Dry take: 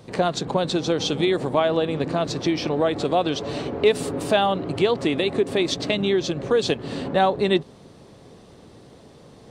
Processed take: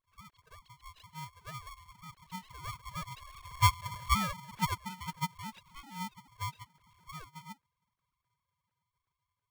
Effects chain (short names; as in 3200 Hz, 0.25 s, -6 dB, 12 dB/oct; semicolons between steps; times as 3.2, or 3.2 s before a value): sine-wave speech; Doppler pass-by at 3.96, 20 m/s, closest 7.8 m; polarity switched at an audio rate 550 Hz; gain -8.5 dB